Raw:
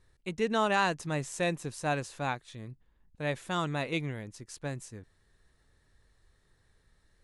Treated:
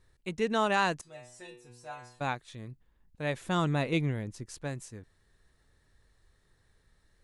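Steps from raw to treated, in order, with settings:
0:01.01–0:02.21: stiff-string resonator 120 Hz, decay 0.61 s, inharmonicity 0.002
0:03.41–0:04.63: low-shelf EQ 460 Hz +6.5 dB

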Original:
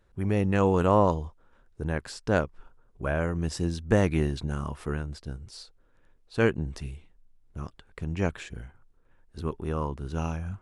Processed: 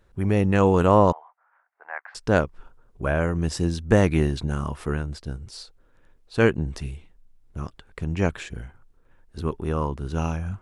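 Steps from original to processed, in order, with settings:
0:01.12–0:02.15: Chebyshev band-pass filter 720–2,100 Hz, order 3
level +4.5 dB

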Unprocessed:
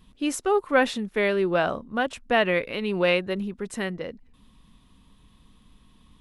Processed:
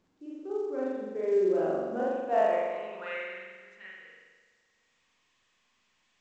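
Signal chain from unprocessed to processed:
source passing by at 0:01.95, 5 m/s, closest 2.4 metres
band-pass filter sweep 380 Hz → 2,100 Hz, 0:01.88–0:03.36
spring reverb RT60 1.4 s, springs 42 ms, chirp 70 ms, DRR −7.5 dB
level −4.5 dB
A-law companding 128 kbit/s 16,000 Hz

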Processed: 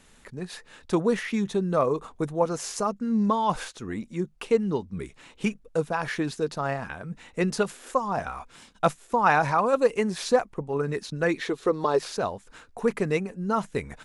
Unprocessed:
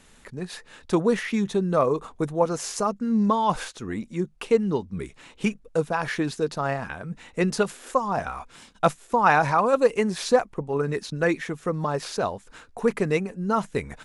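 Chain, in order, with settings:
0:11.38–0:11.99: graphic EQ with 15 bands 160 Hz −8 dB, 400 Hz +11 dB, 1,000 Hz +4 dB, 4,000 Hz +12 dB
level −2 dB

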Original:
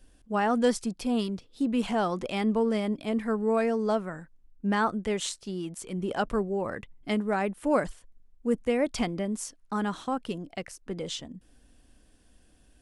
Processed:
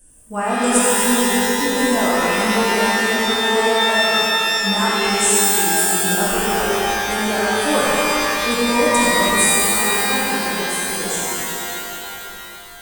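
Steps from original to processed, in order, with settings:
high shelf with overshoot 6,200 Hz +12.5 dB, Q 3
reverb reduction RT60 1.9 s
reverb with rising layers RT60 3.3 s, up +12 semitones, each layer −2 dB, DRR −8 dB

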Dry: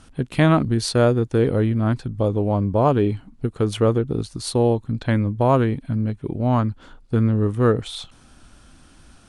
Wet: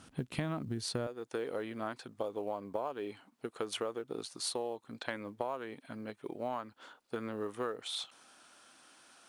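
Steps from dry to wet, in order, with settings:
high-pass filter 110 Hz 12 dB per octave, from 0:01.07 530 Hz
downward compressor 16 to 1, threshold −28 dBFS, peak gain reduction 17 dB
log-companded quantiser 8 bits
level −4.5 dB

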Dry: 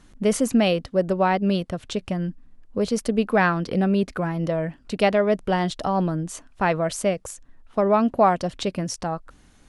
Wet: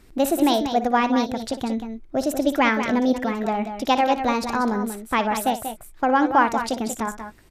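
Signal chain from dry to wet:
multi-tap delay 75/241/264 ms −12.5/−9/−17.5 dB
change of speed 1.29×

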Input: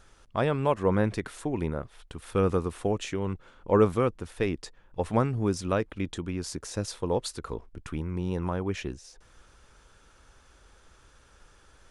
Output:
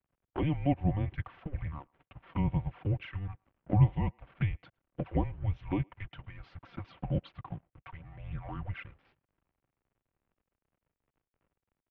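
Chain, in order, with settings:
comb filter 4.8 ms, depth 68%
flanger swept by the level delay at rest 10.6 ms, full sweep at −22.5 dBFS
slack as between gear wheels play −45.5 dBFS
single-sideband voice off tune −300 Hz 260–3,200 Hz
far-end echo of a speakerphone 110 ms, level −30 dB
level −3 dB

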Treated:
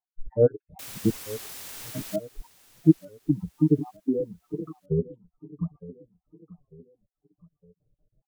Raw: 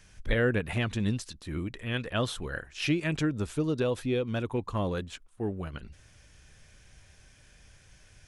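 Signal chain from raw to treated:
time-frequency cells dropped at random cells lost 66%
inverse Chebyshev low-pass filter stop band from 2,200 Hz, stop band 60 dB
noise reduction from a noise print of the clip's start 27 dB
comb filter 6.7 ms, depth 94%
in parallel at −1 dB: downward compressor, threshold −41 dBFS, peak gain reduction 21 dB
0:00.79–0:02.16: on the sum: bit-depth reduction 8 bits, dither triangular
on a send: repeating echo 904 ms, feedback 42%, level −17.5 dB
on the sum: wow of a warped record 33 1/3 rpm, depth 160 cents
level +7.5 dB

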